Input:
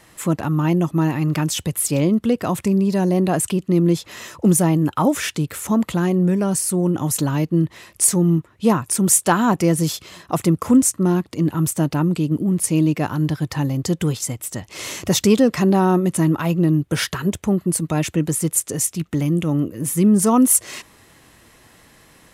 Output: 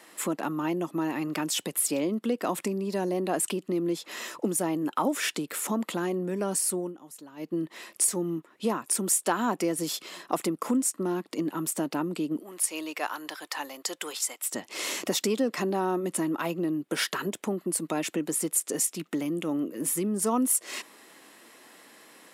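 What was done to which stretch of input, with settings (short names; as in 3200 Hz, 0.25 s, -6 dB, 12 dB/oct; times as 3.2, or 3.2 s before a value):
6.66–7.65 dip -22 dB, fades 0.29 s
12.39–14.52 HPF 810 Hz
whole clip: compressor 3:1, threshold -22 dBFS; HPF 240 Hz 24 dB/oct; notch 6200 Hz, Q 18; gain -1.5 dB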